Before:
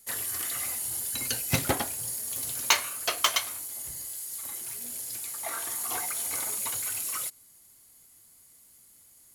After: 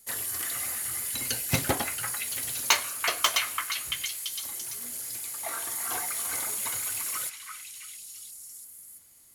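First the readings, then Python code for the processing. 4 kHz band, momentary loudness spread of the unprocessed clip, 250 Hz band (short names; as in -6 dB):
+1.0 dB, 10 LU, 0.0 dB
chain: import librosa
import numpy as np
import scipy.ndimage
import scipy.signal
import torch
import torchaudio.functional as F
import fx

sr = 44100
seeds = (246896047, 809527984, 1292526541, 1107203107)

y = fx.echo_stepped(x, sr, ms=338, hz=1600.0, octaves=0.7, feedback_pct=70, wet_db=-2)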